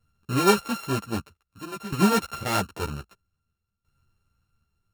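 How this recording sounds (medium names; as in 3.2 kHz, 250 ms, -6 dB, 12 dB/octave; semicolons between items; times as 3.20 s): a buzz of ramps at a fixed pitch in blocks of 32 samples; tremolo saw down 0.52 Hz, depth 85%; a shimmering, thickened sound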